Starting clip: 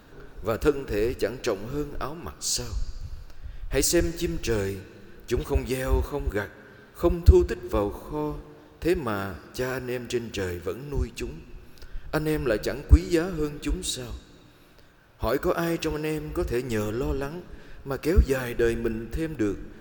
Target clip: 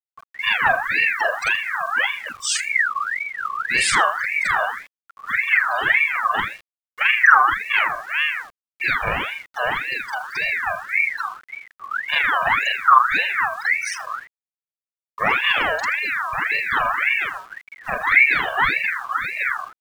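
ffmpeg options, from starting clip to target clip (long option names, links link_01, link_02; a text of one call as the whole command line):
ffmpeg -i in.wav -filter_complex "[0:a]afftfilt=real='re':imag='-im':win_size=4096:overlap=0.75,aecho=1:1:1.7:0.79,asplit=2[link_01][link_02];[link_02]acontrast=89,volume=-2.5dB[link_03];[link_01][link_03]amix=inputs=2:normalize=0,afftfilt=real='re*gte(hypot(re,im),0.1)':imag='im*gte(hypot(re,im),0.1)':win_size=1024:overlap=0.75,aresample=16000,asoftclip=type=tanh:threshold=-7dB,aresample=44100,asplit=2[link_04][link_05];[link_05]adelay=81,lowpass=frequency=1200:poles=1,volume=-9.5dB,asplit=2[link_06][link_07];[link_07]adelay=81,lowpass=frequency=1200:poles=1,volume=0.39,asplit=2[link_08][link_09];[link_09]adelay=81,lowpass=frequency=1200:poles=1,volume=0.39,asplit=2[link_10][link_11];[link_11]adelay=81,lowpass=frequency=1200:poles=1,volume=0.39[link_12];[link_04][link_06][link_08][link_10][link_12]amix=inputs=5:normalize=0,agate=range=-33dB:threshold=-29dB:ratio=3:detection=peak,acrusher=bits=7:mix=0:aa=0.000001,aeval=exprs='val(0)*sin(2*PI*1700*n/s+1700*0.35/1.8*sin(2*PI*1.8*n/s))':channel_layout=same,volume=3dB" out.wav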